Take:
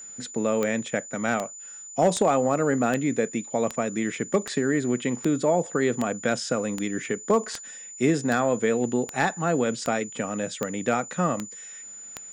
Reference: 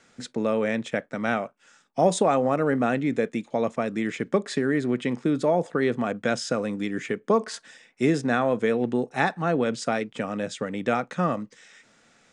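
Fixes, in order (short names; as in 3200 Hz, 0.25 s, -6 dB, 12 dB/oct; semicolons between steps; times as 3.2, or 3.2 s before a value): clip repair -12 dBFS; de-click; notch 7000 Hz, Q 30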